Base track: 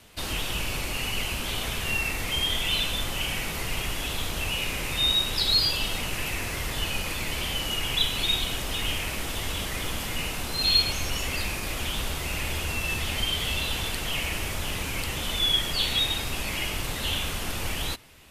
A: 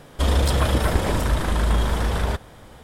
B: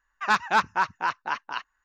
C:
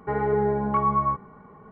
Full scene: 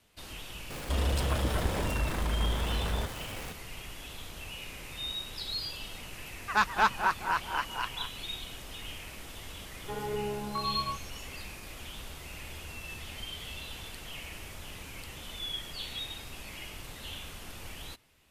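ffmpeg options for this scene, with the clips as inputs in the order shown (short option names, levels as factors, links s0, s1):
-filter_complex "[0:a]volume=0.211[s0];[1:a]aeval=exprs='val(0)+0.5*0.0473*sgn(val(0))':c=same[s1];[2:a]asplit=2[s2][s3];[s3]adelay=210,lowpass=f=2000:p=1,volume=0.422,asplit=2[s4][s5];[s5]adelay=210,lowpass=f=2000:p=1,volume=0.39,asplit=2[s6][s7];[s7]adelay=210,lowpass=f=2000:p=1,volume=0.39,asplit=2[s8][s9];[s9]adelay=210,lowpass=f=2000:p=1,volume=0.39[s10];[s2][s4][s6][s8][s10]amix=inputs=5:normalize=0[s11];[s1]atrim=end=2.83,asetpts=PTS-STARTPTS,volume=0.282,afade=t=in:d=0.004:c=hsin,afade=t=out:st=2.826:d=0.004:c=hsin,adelay=700[s12];[s11]atrim=end=1.84,asetpts=PTS-STARTPTS,volume=0.668,afade=t=in:d=0.004:c=hsin,afade=t=out:st=1.836:d=0.004:c=hsin,adelay=6270[s13];[3:a]atrim=end=1.71,asetpts=PTS-STARTPTS,volume=0.266,afade=t=in:d=0.004:c=hsin,afade=t=out:st=1.706:d=0.004:c=hsin,adelay=9810[s14];[s0][s12][s13][s14]amix=inputs=4:normalize=0"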